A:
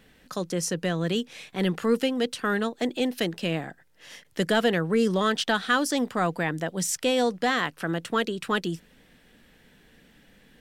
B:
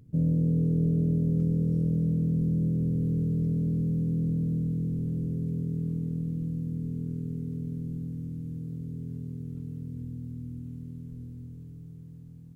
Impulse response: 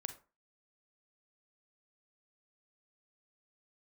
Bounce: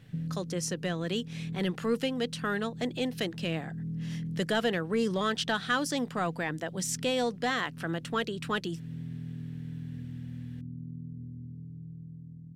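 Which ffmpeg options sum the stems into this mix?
-filter_complex "[0:a]highshelf=f=7.2k:g=-10.5,acontrast=70,volume=-12dB,asplit=2[a][b];[1:a]acompressor=threshold=-35dB:ratio=6,bandpass=f=170:t=q:w=1.3:csg=0,volume=2dB[c];[b]apad=whole_len=553747[d];[c][d]sidechaincompress=threshold=-38dB:ratio=8:attack=34:release=360[e];[a][e]amix=inputs=2:normalize=0,highshelf=f=3.4k:g=7"

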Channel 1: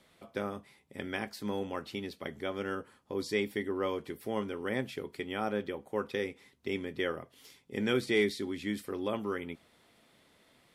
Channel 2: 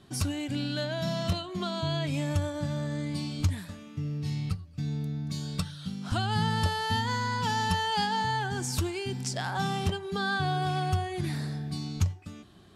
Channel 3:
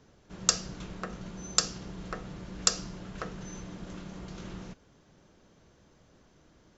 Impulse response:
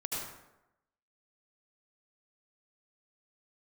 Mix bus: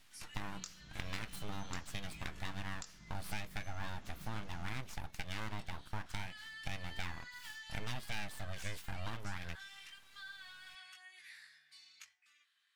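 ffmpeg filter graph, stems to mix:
-filter_complex "[0:a]aeval=exprs='abs(val(0))':c=same,volume=2.5dB[a];[1:a]highpass=f=1.9k:t=q:w=2.9,volume=-13.5dB[b];[2:a]adelay=150,volume=-3.5dB[c];[b][c]amix=inputs=2:normalize=0,flanger=delay=19:depth=2:speed=0.99,acompressor=threshold=-46dB:ratio=5,volume=0dB[d];[a][d]amix=inputs=2:normalize=0,equalizer=f=470:w=1:g=-10.5,acompressor=threshold=-35dB:ratio=6"

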